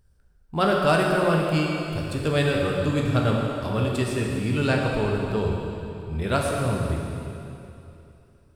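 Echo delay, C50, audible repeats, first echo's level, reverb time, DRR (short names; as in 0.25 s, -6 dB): none, 0.5 dB, none, none, 2.9 s, -1.5 dB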